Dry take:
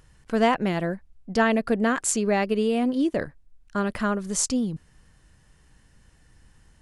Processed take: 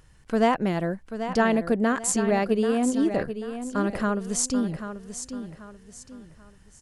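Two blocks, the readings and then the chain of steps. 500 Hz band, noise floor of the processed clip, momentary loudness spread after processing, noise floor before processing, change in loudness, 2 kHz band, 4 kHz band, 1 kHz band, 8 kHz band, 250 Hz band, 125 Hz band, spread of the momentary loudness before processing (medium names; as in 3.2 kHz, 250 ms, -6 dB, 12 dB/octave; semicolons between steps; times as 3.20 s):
0.0 dB, -54 dBFS, 15 LU, -58 dBFS, -1.0 dB, -2.0 dB, -2.5 dB, -0.5 dB, -0.5 dB, +0.5 dB, +0.5 dB, 9 LU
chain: dynamic bell 2.7 kHz, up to -4 dB, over -40 dBFS, Q 0.8; on a send: feedback delay 787 ms, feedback 34%, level -10 dB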